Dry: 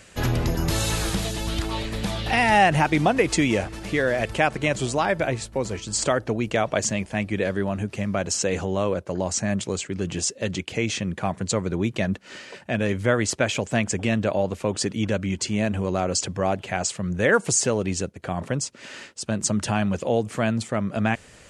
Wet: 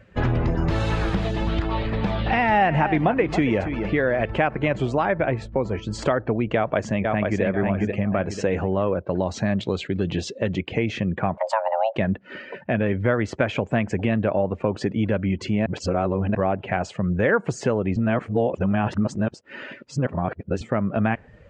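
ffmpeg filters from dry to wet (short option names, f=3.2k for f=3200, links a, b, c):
-filter_complex "[0:a]asplit=3[a][b][c];[a]afade=t=out:st=1.37:d=0.02[d];[b]aecho=1:1:278:0.251,afade=t=in:st=1.37:d=0.02,afade=t=out:st=3.85:d=0.02[e];[c]afade=t=in:st=3.85:d=0.02[f];[d][e][f]amix=inputs=3:normalize=0,asplit=2[g][h];[h]afade=t=in:st=6.55:d=0.01,afade=t=out:st=7.42:d=0.01,aecho=0:1:490|980|1470|1960:0.630957|0.220835|0.0772923|0.0270523[i];[g][i]amix=inputs=2:normalize=0,asettb=1/sr,asplit=3[j][k][l];[j]atrim=end=9.034[m];[k]atrim=start=9.03:end=10.38,asetpts=PTS-STARTPTS,afade=t=in:d=0.004:c=qsin,afade=t=out:st=1.346:d=0.004:c=qsin,equalizer=f=3.9k:w=2.3:g=10.5[n];[l]atrim=start=10.376[o];[m][n]acrossfade=d=0.004:c1=hsin:c2=qsin[p];[p][o]acrossfade=d=0.004:c1=qsin:c2=hsin,asettb=1/sr,asplit=3[q][r][s];[q]atrim=end=11.374[t];[r]atrim=start=11.37:end=11.96,asetpts=PTS-STARTPTS,afade=t=in:d=0.004:c=qsin,afade=t=out:st=0.586:d=0.004:c=qsin,afreqshift=440[u];[s]atrim=start=11.956[v];[t][u]acrossfade=d=0.004:c1=hsin:c2=qsin[w];[w][v]acrossfade=d=0.004:c1=qsin:c2=hsin,asplit=5[x][y][z][aa][ab];[x]atrim=end=15.662[ac];[y]atrim=start=15.658:end=16.352,asetpts=PTS-STARTPTS,areverse[ad];[z]atrim=start=16.348:end=17.962[ae];[aa]atrim=start=17.958:end=20.612,asetpts=PTS-STARTPTS,areverse[af];[ab]atrim=start=20.608[ag];[ac][ad]acrossfade=d=0.004:c1=hsin:c2=hsin[ah];[ah][ae]acrossfade=d=0.004:c1=hsin:c2=hsin[ai];[ai][af]acrossfade=d=0.004:c1=hsin:c2=hsin[aj];[aj][ag]acrossfade=d=0.004:c1=hsin:c2=hsin,afftdn=nr=14:nf=-43,lowpass=2.1k,acompressor=threshold=-29dB:ratio=2,volume=7dB"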